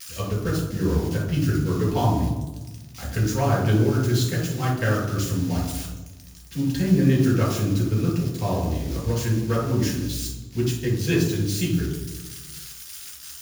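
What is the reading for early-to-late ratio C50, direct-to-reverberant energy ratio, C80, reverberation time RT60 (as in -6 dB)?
4.0 dB, -2.5 dB, 7.5 dB, 1.2 s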